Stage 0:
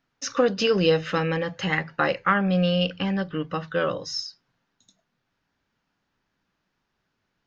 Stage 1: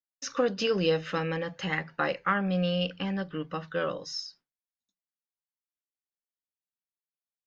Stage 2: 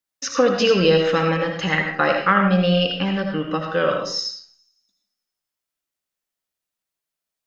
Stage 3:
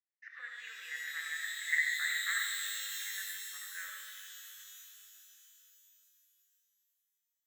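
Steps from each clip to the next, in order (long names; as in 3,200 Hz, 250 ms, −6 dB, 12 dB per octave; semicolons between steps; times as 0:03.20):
downward expander −45 dBFS; parametric band 110 Hz −12 dB 0.25 octaves; level −5.5 dB
delay with a high-pass on its return 171 ms, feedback 44%, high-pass 5,000 Hz, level −23.5 dB; on a send at −3 dB: convolution reverb RT60 0.50 s, pre-delay 40 ms; on the sum: level +9 dB
flat-topped band-pass 1,900 Hz, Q 4.8; reverb with rising layers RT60 3.3 s, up +12 semitones, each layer −2 dB, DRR 4 dB; level −7 dB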